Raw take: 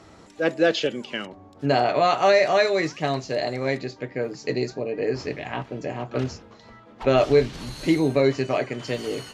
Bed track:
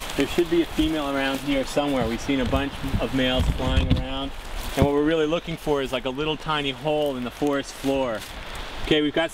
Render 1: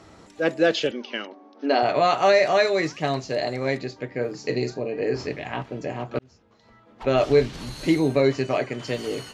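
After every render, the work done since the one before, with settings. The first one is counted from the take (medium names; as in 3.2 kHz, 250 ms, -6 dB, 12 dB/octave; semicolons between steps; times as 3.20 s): 0.91–1.83 s: brick-wall FIR band-pass 210–6400 Hz; 4.09–5.27 s: doubling 41 ms -10.5 dB; 6.19–7.39 s: fade in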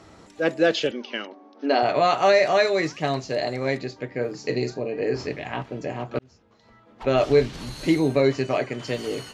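no audible change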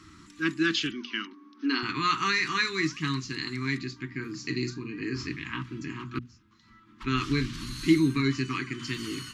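Chebyshev band-stop 330–1100 Hz, order 3; hum notches 60/120/180/240 Hz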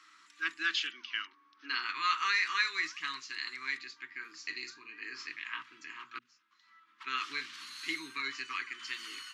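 high-pass 1.3 kHz 12 dB/octave; treble shelf 4.7 kHz -10 dB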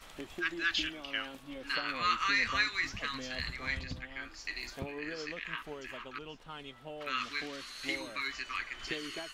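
add bed track -21.5 dB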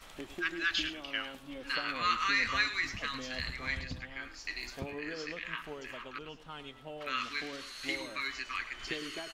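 delay 105 ms -14 dB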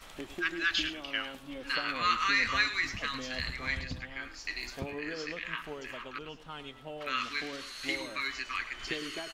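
trim +2 dB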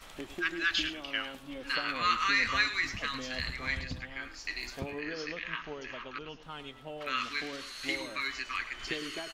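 5.01–6.43 s: brick-wall FIR low-pass 6.8 kHz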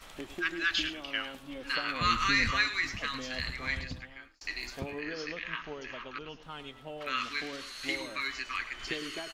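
2.01–2.51 s: tone controls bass +14 dB, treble +4 dB; 3.83–4.41 s: fade out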